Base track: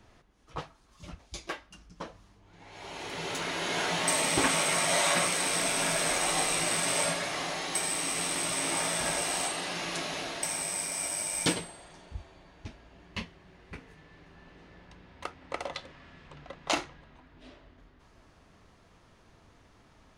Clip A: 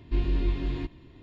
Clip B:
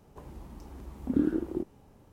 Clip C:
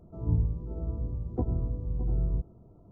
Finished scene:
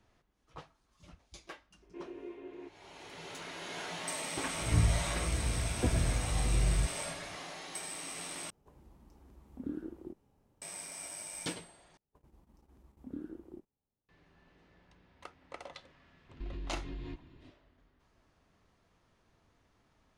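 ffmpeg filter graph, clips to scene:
ffmpeg -i bed.wav -i cue0.wav -i cue1.wav -i cue2.wav -filter_complex "[1:a]asplit=2[link_01][link_02];[2:a]asplit=2[link_03][link_04];[0:a]volume=-11dB[link_05];[link_01]highpass=frequency=330:width=0.5412,highpass=frequency=330:width=1.3066,equalizer=frequency=400:width_type=q:width=4:gain=10,equalizer=frequency=590:width_type=q:width=4:gain=4,equalizer=frequency=1200:width_type=q:width=4:gain=-3,equalizer=frequency=1800:width_type=q:width=4:gain=-4,lowpass=frequency=2500:width=0.5412,lowpass=frequency=2500:width=1.3066[link_06];[link_04]agate=range=-18dB:threshold=-47dB:ratio=16:release=100:detection=peak[link_07];[link_02]acompressor=threshold=-38dB:ratio=3:attack=54:release=24:knee=1:detection=rms[link_08];[link_05]asplit=3[link_09][link_10][link_11];[link_09]atrim=end=8.504[link_12];[link_03]atrim=end=2.12,asetpts=PTS-STARTPTS,volume=-13.5dB[link_13];[link_10]atrim=start=10.616:end=11.974[link_14];[link_07]atrim=end=2.12,asetpts=PTS-STARTPTS,volume=-17dB[link_15];[link_11]atrim=start=14.086[link_16];[link_06]atrim=end=1.22,asetpts=PTS-STARTPTS,volume=-11.5dB,afade=type=in:duration=0.004:curve=hsin,afade=type=out:start_time=1.216:duration=0.004:curve=hsin,adelay=1820[link_17];[3:a]atrim=end=2.91,asetpts=PTS-STARTPTS,volume=-1dB,afade=type=in:duration=0.004:curve=hsin,afade=type=out:start_time=2.906:duration=0.004:curve=hsin,adelay=196245S[link_18];[link_08]atrim=end=1.22,asetpts=PTS-STARTPTS,volume=-7dB,afade=type=in:duration=0.004:curve=hsin,afade=type=out:start_time=1.216:duration=0.004:curve=hsin,adelay=16290[link_19];[link_12][link_13]acrossfade=duration=0.004:curve1=hsin:curve2=hsin[link_20];[link_20][link_14]acrossfade=duration=0.004:curve1=hsin:curve2=hsin[link_21];[link_21][link_15]acrossfade=duration=0.004:curve1=hsin:curve2=hsin[link_22];[link_22][link_16]acrossfade=duration=0.004:curve1=hsin:curve2=hsin[link_23];[link_23][link_17][link_18][link_19]amix=inputs=4:normalize=0" out.wav

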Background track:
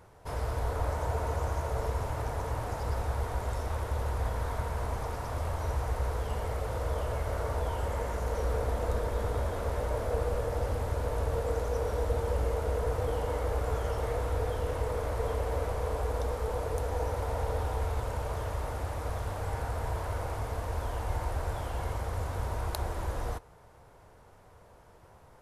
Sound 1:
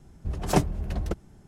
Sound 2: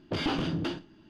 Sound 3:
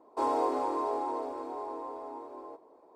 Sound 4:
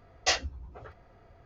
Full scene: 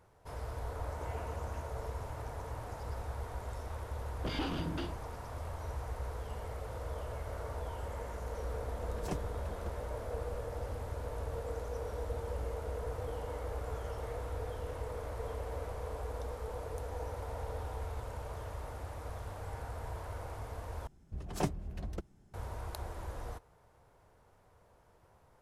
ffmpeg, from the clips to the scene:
ffmpeg -i bed.wav -i cue0.wav -i cue1.wav -filter_complex "[2:a]asplit=2[link_01][link_02];[1:a]asplit=2[link_03][link_04];[0:a]volume=-8.5dB[link_05];[link_01]highpass=frequency=410:width_type=q:width=0.5412,highpass=frequency=410:width_type=q:width=1.307,lowpass=frequency=2500:width_type=q:width=0.5176,lowpass=frequency=2500:width_type=q:width=0.7071,lowpass=frequency=2500:width_type=q:width=1.932,afreqshift=-100[link_06];[link_05]asplit=2[link_07][link_08];[link_07]atrim=end=20.874[link_09];[link_04]atrim=end=1.47,asetpts=PTS-STARTPTS,volume=-11dB[link_10];[link_08]atrim=start=22.336[link_11];[link_06]atrim=end=1.09,asetpts=PTS-STARTPTS,volume=-16.5dB,afade=type=in:duration=0.004:curve=hsin,afade=type=out:start_time=1.086:duration=0.004:curve=hsin,adelay=890[link_12];[link_02]atrim=end=1.09,asetpts=PTS-STARTPTS,volume=-7.5dB,afade=type=in:duration=0.004:curve=hsin,afade=type=out:start_time=1.086:duration=0.004:curve=hsin,adelay=182133S[link_13];[link_03]atrim=end=1.47,asetpts=PTS-STARTPTS,volume=-17dB,afade=type=in:duration=0.004:curve=hsin,afade=type=out:start_time=1.466:duration=0.004:curve=hsin,adelay=8550[link_14];[link_09][link_10]acrossfade=duration=0.004:curve1=hsin:curve2=hsin[link_15];[link_15][link_11]acrossfade=duration=0.004:curve1=hsin:curve2=hsin[link_16];[link_16][link_12][link_13][link_14]amix=inputs=4:normalize=0" out.wav

